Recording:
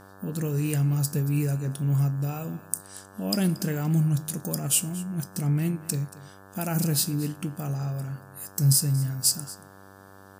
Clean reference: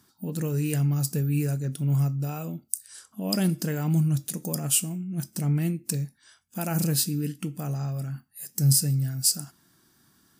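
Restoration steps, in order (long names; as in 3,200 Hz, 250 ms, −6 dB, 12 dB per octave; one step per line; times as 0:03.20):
hum removal 97.1 Hz, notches 18
downward expander −41 dBFS, range −21 dB
echo removal 230 ms −18.5 dB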